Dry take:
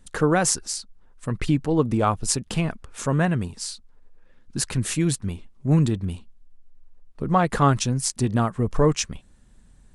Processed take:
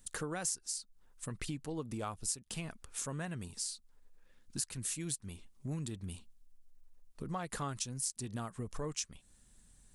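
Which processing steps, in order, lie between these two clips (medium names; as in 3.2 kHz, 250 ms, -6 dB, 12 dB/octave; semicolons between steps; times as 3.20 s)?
pre-emphasis filter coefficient 0.8; compression 3:1, threshold -42 dBFS, peak gain reduction 17 dB; trim +3 dB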